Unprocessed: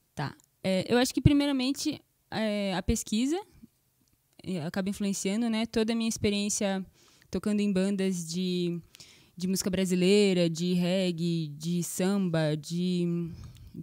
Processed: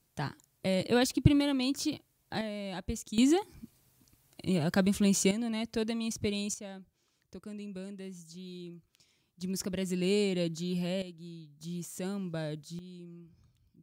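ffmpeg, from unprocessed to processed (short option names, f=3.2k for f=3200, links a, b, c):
-af "asetnsamples=n=441:p=0,asendcmd='2.41 volume volume -8.5dB;3.18 volume volume 4dB;5.31 volume volume -5dB;6.54 volume volume -15dB;9.41 volume volume -6dB;11.02 volume volume -17dB;11.61 volume volume -9dB;12.79 volume volume -19.5dB',volume=-2dB"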